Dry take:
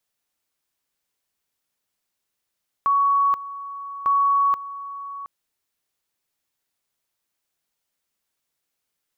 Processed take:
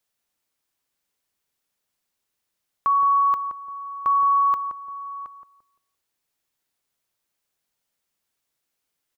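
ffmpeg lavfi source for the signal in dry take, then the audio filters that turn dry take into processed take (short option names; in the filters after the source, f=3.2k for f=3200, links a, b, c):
-f lavfi -i "aevalsrc='pow(10,(-15.5-15.5*gte(mod(t,1.2),0.48))/20)*sin(2*PI*1120*t)':d=2.4:s=44100"
-filter_complex "[0:a]asplit=2[a][b];[b]adelay=172,lowpass=f=900:p=1,volume=-6dB,asplit=2[c][d];[d]adelay=172,lowpass=f=900:p=1,volume=0.35,asplit=2[e][f];[f]adelay=172,lowpass=f=900:p=1,volume=0.35,asplit=2[g][h];[h]adelay=172,lowpass=f=900:p=1,volume=0.35[i];[a][c][e][g][i]amix=inputs=5:normalize=0"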